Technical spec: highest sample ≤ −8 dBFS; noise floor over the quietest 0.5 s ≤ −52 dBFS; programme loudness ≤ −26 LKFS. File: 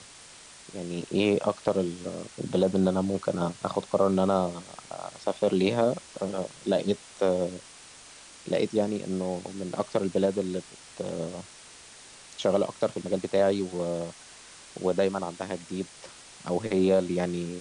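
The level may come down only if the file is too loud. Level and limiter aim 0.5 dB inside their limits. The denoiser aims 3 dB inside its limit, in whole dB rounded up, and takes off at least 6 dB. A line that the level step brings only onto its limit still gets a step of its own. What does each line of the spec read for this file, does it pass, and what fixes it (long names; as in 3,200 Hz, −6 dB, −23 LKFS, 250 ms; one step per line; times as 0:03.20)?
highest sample −10.0 dBFS: in spec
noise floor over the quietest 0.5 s −49 dBFS: out of spec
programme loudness −28.5 LKFS: in spec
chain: broadband denoise 6 dB, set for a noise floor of −49 dBFS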